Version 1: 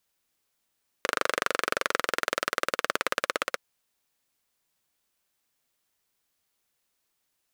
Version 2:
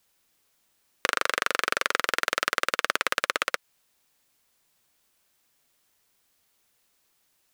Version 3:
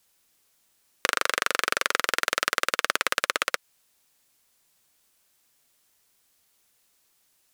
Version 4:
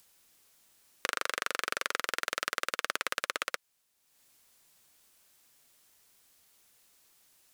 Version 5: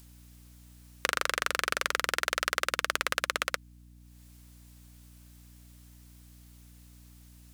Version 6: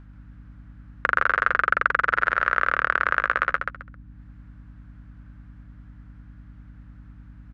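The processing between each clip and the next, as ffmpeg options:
-filter_complex "[0:a]acrossover=split=1100|4100[a][b][c];[a]acompressor=threshold=-39dB:ratio=4[d];[b]acompressor=threshold=-29dB:ratio=4[e];[c]acompressor=threshold=-40dB:ratio=4[f];[d][e][f]amix=inputs=3:normalize=0,volume=7.5dB"
-af "equalizer=f=9.7k:t=o:w=2.1:g=4"
-af "acompressor=mode=upward:threshold=-46dB:ratio=2.5,volume=-8dB"
-af "aeval=exprs='val(0)+0.00158*(sin(2*PI*60*n/s)+sin(2*PI*2*60*n/s)/2+sin(2*PI*3*60*n/s)/3+sin(2*PI*4*60*n/s)/4+sin(2*PI*5*60*n/s)/5)':c=same,volume=3.5dB"
-af "lowpass=f=1.5k:t=q:w=3.3,aecho=1:1:133|266|399:0.562|0.135|0.0324,aeval=exprs='val(0)+0.00447*(sin(2*PI*50*n/s)+sin(2*PI*2*50*n/s)/2+sin(2*PI*3*50*n/s)/3+sin(2*PI*4*50*n/s)/4+sin(2*PI*5*50*n/s)/5)':c=same,volume=1.5dB"

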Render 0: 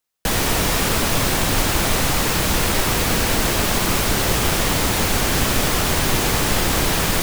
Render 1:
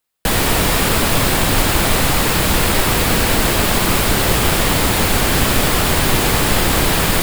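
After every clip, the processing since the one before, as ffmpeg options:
-af "equalizer=f=6k:w=3.4:g=-5.5,volume=4dB"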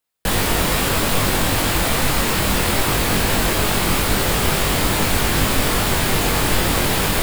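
-af "flanger=delay=20:depth=2.6:speed=2.4"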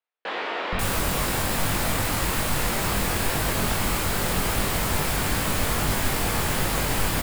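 -filter_complex "[0:a]acrossover=split=350|3500[a][b][c];[a]adelay=470[d];[c]adelay=540[e];[d][b][e]amix=inputs=3:normalize=0,volume=-5.5dB"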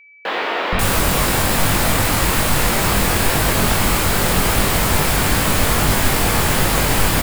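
-af "acrusher=bits=9:mix=0:aa=0.000001,aeval=exprs='val(0)+0.00251*sin(2*PI*2300*n/s)':c=same,volume=8dB"

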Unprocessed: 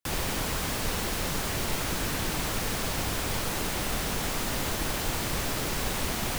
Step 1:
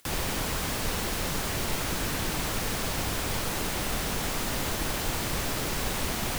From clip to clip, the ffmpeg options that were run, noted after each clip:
-af "acompressor=mode=upward:threshold=-39dB:ratio=2.5"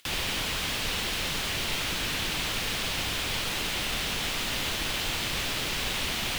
-af "equalizer=f=3.1k:t=o:w=1.6:g=12,volume=-4.5dB"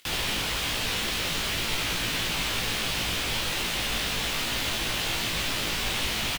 -filter_complex "[0:a]asplit=2[a][b];[b]adelay=18,volume=-3dB[c];[a][c]amix=inputs=2:normalize=0"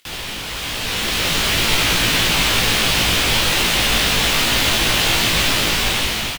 -af "dynaudnorm=f=420:g=5:m=13dB"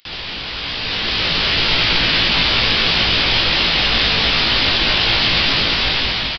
-af "aresample=11025,aresample=44100,aemphasis=mode=production:type=50fm,aecho=1:1:224:0.447,volume=-1dB"

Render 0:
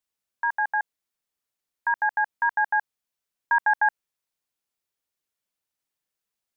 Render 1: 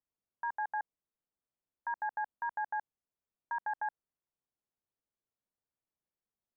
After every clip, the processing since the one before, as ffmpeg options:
-af "lowshelf=f=490:g=5.5,alimiter=limit=-19dB:level=0:latency=1:release=38,lowpass=1.2k,volume=-6dB"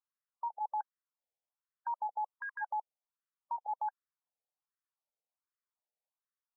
-af "afftfilt=real='re*between(b*sr/1024,600*pow(1500/600,0.5+0.5*sin(2*PI*1.3*pts/sr))/1.41,600*pow(1500/600,0.5+0.5*sin(2*PI*1.3*pts/sr))*1.41)':imag='im*between(b*sr/1024,600*pow(1500/600,0.5+0.5*sin(2*PI*1.3*pts/sr))/1.41,600*pow(1500/600,0.5+0.5*sin(2*PI*1.3*pts/sr))*1.41)':win_size=1024:overlap=0.75,volume=1.5dB"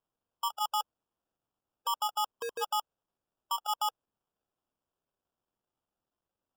-af "acrusher=samples=21:mix=1:aa=0.000001,volume=4.5dB"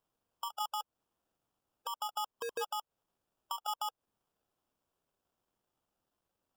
-af "acompressor=threshold=-38dB:ratio=6,alimiter=level_in=9dB:limit=-24dB:level=0:latency=1:release=187,volume=-9dB,volume=4dB"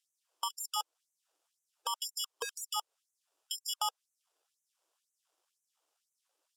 -af "crystalizer=i=2.5:c=0,highpass=130,lowpass=7.9k,afftfilt=real='re*gte(b*sr/1024,260*pow(5900/260,0.5+0.5*sin(2*PI*2*pts/sr)))':imag='im*gte(b*sr/1024,260*pow(5900/260,0.5+0.5*sin(2*PI*2*pts/sr)))':win_size=1024:overlap=0.75,volume=2.5dB"

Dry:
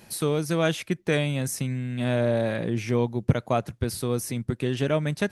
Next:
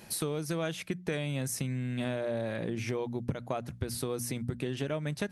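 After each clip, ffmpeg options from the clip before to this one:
-af "bandreject=f=60:t=h:w=6,bandreject=f=120:t=h:w=6,bandreject=f=180:t=h:w=6,bandreject=f=240:t=h:w=6,acompressor=threshold=-30dB:ratio=6"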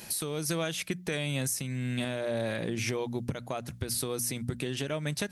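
-af "highshelf=f=2.6k:g=9.5,alimiter=limit=-22.5dB:level=0:latency=1:release=339,volume=2dB"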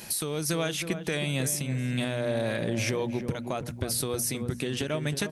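-filter_complex "[0:a]asplit=2[a][b];[b]adelay=317,lowpass=f=1.1k:p=1,volume=-7.5dB,asplit=2[c][d];[d]adelay=317,lowpass=f=1.1k:p=1,volume=0.36,asplit=2[e][f];[f]adelay=317,lowpass=f=1.1k:p=1,volume=0.36,asplit=2[g][h];[h]adelay=317,lowpass=f=1.1k:p=1,volume=0.36[i];[a][c][e][g][i]amix=inputs=5:normalize=0,volume=2.5dB"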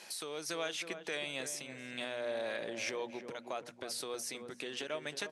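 -af "highpass=460,lowpass=7k,volume=-6dB"

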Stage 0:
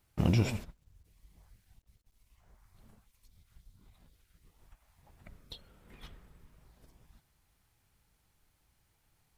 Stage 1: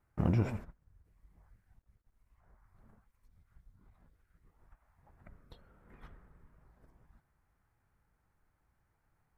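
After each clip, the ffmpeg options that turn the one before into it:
-af "highshelf=f=2.3k:t=q:w=1.5:g=-12.5,volume=-2.5dB"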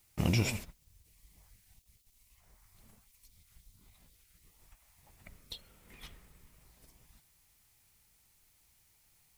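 -af "aexciter=amount=7.4:drive=7.6:freq=2.3k"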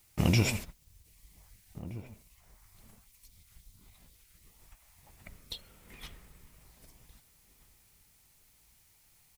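-filter_complex "[0:a]asplit=2[a][b];[b]adelay=1574,volume=-16dB,highshelf=f=4k:g=-35.4[c];[a][c]amix=inputs=2:normalize=0,volume=3.5dB"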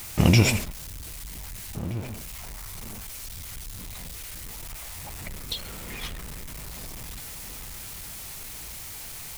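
-af "aeval=exprs='val(0)+0.5*0.00841*sgn(val(0))':c=same,volume=7.5dB"

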